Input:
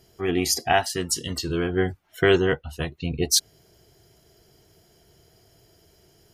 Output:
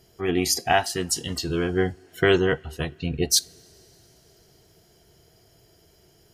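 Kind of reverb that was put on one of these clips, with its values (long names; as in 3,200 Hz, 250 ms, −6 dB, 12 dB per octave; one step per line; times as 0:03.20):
coupled-rooms reverb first 0.26 s, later 4.3 s, from −22 dB, DRR 18 dB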